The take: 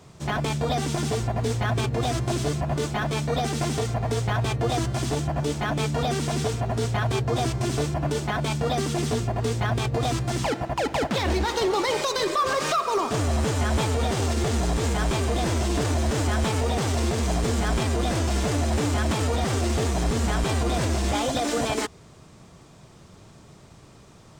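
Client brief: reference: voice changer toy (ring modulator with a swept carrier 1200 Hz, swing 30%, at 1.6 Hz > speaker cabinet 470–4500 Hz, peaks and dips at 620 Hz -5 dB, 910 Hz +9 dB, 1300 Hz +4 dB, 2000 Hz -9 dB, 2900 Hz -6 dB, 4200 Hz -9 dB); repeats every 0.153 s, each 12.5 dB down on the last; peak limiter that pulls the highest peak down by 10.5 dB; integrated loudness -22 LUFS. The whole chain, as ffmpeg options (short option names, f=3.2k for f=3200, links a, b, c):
-af "alimiter=level_in=1dB:limit=-24dB:level=0:latency=1,volume=-1dB,aecho=1:1:153|306|459:0.237|0.0569|0.0137,aeval=exprs='val(0)*sin(2*PI*1200*n/s+1200*0.3/1.6*sin(2*PI*1.6*n/s))':c=same,highpass=470,equalizer=f=620:t=q:w=4:g=-5,equalizer=f=910:t=q:w=4:g=9,equalizer=f=1.3k:t=q:w=4:g=4,equalizer=f=2k:t=q:w=4:g=-9,equalizer=f=2.9k:t=q:w=4:g=-6,equalizer=f=4.2k:t=q:w=4:g=-9,lowpass=f=4.5k:w=0.5412,lowpass=f=4.5k:w=1.3066,volume=10dB"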